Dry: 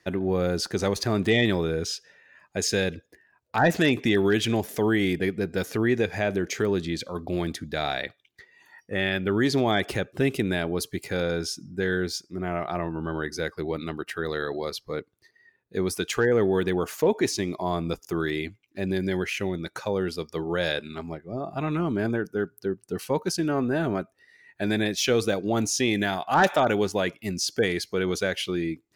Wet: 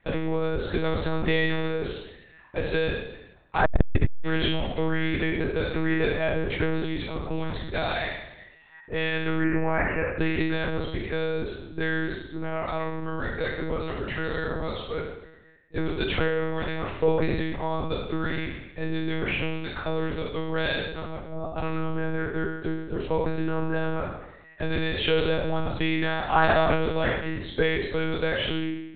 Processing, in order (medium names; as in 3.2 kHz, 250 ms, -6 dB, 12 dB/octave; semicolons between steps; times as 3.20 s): spectral sustain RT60 0.93 s; 9.43–10.20 s: steep low-pass 2.7 kHz 96 dB/octave; 16.28–17.00 s: bass shelf 400 Hz -10.5 dB; monotone LPC vocoder at 8 kHz 160 Hz; 3.65–4.22 s: tilt EQ -3.5 dB/octave; transformer saturation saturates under 160 Hz; trim -1 dB